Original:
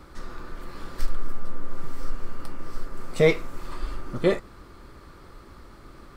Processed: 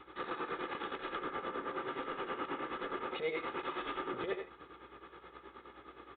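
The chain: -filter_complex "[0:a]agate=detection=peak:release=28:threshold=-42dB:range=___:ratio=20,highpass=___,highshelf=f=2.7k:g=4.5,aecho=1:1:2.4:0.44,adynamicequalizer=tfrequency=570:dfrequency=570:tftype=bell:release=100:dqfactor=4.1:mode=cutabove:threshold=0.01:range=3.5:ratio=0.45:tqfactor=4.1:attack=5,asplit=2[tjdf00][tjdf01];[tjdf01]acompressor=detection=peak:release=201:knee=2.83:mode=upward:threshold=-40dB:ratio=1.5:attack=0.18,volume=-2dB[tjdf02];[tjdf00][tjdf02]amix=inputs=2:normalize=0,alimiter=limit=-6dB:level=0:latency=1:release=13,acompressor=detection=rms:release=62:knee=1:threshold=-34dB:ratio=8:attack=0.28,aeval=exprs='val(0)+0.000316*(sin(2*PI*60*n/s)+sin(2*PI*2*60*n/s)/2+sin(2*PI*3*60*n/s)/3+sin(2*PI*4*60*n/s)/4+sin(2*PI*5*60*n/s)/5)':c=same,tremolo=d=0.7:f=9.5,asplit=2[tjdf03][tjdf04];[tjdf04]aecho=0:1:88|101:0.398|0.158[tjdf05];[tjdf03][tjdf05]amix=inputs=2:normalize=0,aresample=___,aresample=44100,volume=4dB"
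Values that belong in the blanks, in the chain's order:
-13dB, 300, 8000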